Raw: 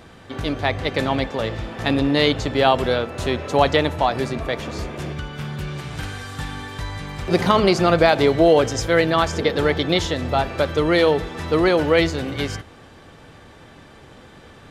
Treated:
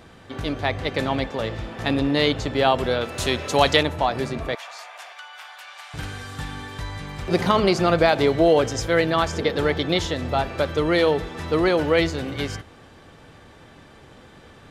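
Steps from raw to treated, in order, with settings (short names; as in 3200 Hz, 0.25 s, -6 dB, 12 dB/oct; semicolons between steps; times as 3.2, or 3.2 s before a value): 3.01–3.83 high shelf 2400 Hz +11 dB; 4.55–5.94 elliptic high-pass 710 Hz, stop band 80 dB; gain -2.5 dB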